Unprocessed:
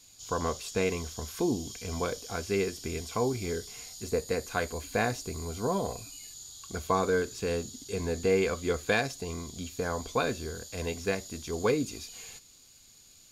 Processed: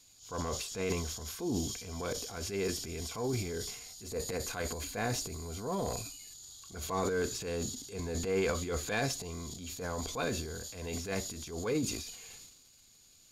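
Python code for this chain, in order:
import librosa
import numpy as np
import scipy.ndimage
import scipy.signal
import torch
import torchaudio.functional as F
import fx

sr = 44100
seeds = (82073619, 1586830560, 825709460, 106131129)

p1 = fx.transient(x, sr, attack_db=-8, sustain_db=10)
p2 = np.clip(10.0 ** (23.0 / 20.0) * p1, -1.0, 1.0) / 10.0 ** (23.0 / 20.0)
p3 = p1 + (p2 * 10.0 ** (-8.5 / 20.0))
y = p3 * 10.0 ** (-7.5 / 20.0)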